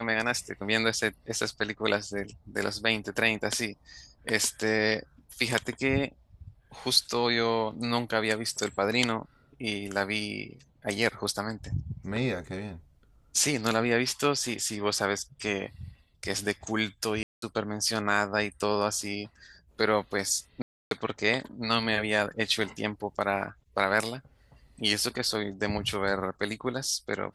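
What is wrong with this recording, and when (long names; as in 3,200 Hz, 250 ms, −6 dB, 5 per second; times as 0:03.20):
0:17.23–0:17.42: drop-out 193 ms
0:20.62–0:20.91: drop-out 292 ms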